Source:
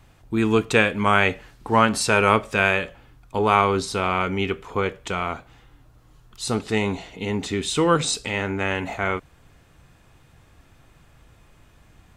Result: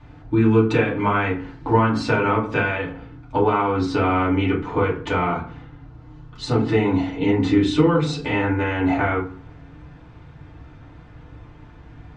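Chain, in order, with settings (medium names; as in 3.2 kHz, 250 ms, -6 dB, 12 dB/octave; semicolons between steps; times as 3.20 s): compression, threshold -25 dBFS, peak gain reduction 12.5 dB; distance through air 190 m; reverberation RT60 0.45 s, pre-delay 3 ms, DRR -6 dB; trim +1.5 dB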